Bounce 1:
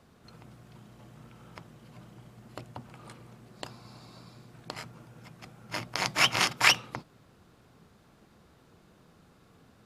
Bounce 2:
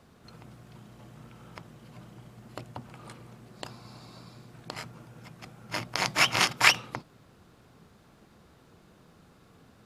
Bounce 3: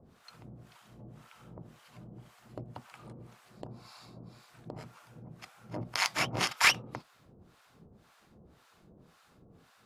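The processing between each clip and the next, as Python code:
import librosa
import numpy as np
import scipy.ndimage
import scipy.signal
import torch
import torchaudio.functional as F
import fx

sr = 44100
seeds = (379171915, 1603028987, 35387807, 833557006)

y1 = fx.end_taper(x, sr, db_per_s=320.0)
y1 = F.gain(torch.from_numpy(y1), 2.0).numpy()
y2 = fx.harmonic_tremolo(y1, sr, hz=1.9, depth_pct=100, crossover_hz=740.0)
y2 = 10.0 ** (-12.5 / 20.0) * np.tanh(y2 / 10.0 ** (-12.5 / 20.0))
y2 = F.gain(torch.from_numpy(y2), 1.5).numpy()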